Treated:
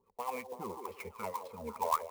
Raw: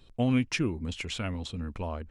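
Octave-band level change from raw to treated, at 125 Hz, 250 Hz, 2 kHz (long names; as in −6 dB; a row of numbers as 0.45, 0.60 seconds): −23.5, −20.0, −12.0 decibels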